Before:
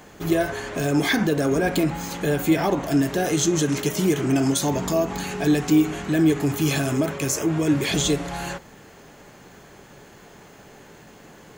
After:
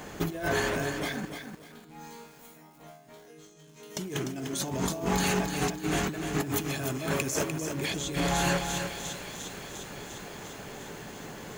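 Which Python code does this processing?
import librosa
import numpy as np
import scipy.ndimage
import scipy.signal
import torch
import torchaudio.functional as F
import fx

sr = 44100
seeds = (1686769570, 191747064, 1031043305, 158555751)

y = fx.echo_wet_highpass(x, sr, ms=351, feedback_pct=74, hz=1900.0, wet_db=-15)
y = fx.over_compress(y, sr, threshold_db=-30.0, ratio=-1.0)
y = fx.resonator_bank(y, sr, root=51, chord='sus4', decay_s=0.78, at=(1.25, 3.97))
y = fx.echo_crushed(y, sr, ms=298, feedback_pct=35, bits=8, wet_db=-6.5)
y = y * librosa.db_to_amplitude(-2.5)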